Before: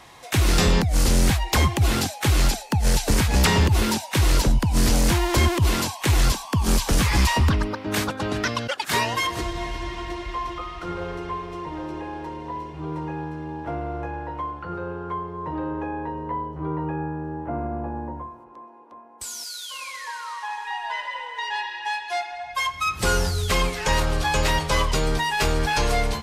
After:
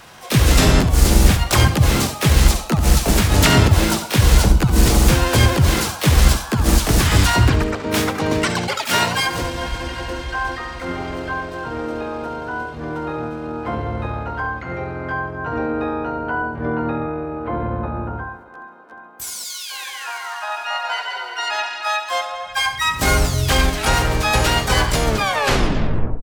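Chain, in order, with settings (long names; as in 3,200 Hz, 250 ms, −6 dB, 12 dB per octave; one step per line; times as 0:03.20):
turntable brake at the end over 1.16 s
flutter between parallel walls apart 11.6 metres, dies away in 0.39 s
pitch-shifted copies added −5 semitones −5 dB, +7 semitones 0 dB
level +1 dB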